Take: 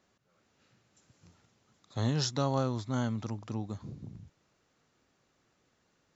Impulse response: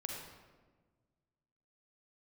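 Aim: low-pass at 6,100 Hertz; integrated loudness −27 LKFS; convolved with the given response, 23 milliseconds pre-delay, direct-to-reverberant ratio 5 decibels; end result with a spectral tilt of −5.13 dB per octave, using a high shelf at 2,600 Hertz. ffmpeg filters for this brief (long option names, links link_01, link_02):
-filter_complex "[0:a]lowpass=6100,highshelf=frequency=2600:gain=7.5,asplit=2[link_01][link_02];[1:a]atrim=start_sample=2205,adelay=23[link_03];[link_02][link_03]afir=irnorm=-1:irlink=0,volume=-5dB[link_04];[link_01][link_04]amix=inputs=2:normalize=0,volume=4.5dB"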